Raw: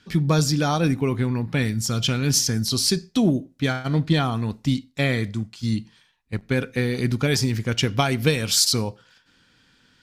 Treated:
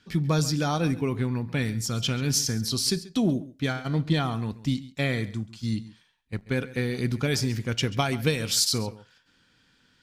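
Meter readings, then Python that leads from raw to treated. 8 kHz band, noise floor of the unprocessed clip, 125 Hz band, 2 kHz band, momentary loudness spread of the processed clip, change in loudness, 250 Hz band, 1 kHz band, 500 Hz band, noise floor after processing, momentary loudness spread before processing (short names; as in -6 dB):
-4.5 dB, -61 dBFS, -4.5 dB, -4.5 dB, 6 LU, -4.5 dB, -4.5 dB, -4.5 dB, -4.5 dB, -65 dBFS, 6 LU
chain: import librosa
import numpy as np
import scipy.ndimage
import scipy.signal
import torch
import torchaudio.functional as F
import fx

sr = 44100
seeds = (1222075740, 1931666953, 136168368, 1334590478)

y = x + 10.0 ** (-18.0 / 20.0) * np.pad(x, (int(136 * sr / 1000.0), 0))[:len(x)]
y = y * librosa.db_to_amplitude(-4.5)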